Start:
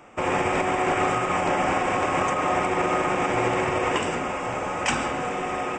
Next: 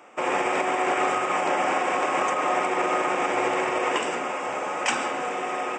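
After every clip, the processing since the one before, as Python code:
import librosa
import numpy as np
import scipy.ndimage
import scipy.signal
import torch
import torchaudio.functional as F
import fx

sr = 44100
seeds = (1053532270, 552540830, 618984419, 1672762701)

y = scipy.signal.sosfilt(scipy.signal.butter(2, 320.0, 'highpass', fs=sr, output='sos'), x)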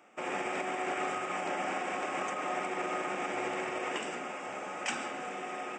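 y = fx.graphic_eq_31(x, sr, hz=(200, 500, 1000), db=(6, -4, -7))
y = F.gain(torch.from_numpy(y), -9.0).numpy()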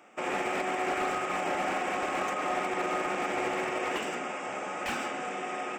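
y = fx.slew_limit(x, sr, full_power_hz=42.0)
y = F.gain(torch.from_numpy(y), 4.0).numpy()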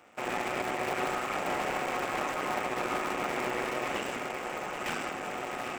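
y = fx.cycle_switch(x, sr, every=3, mode='muted')
y = y + 10.0 ** (-9.5 / 20.0) * np.pad(y, (int(781 * sr / 1000.0), 0))[:len(y)]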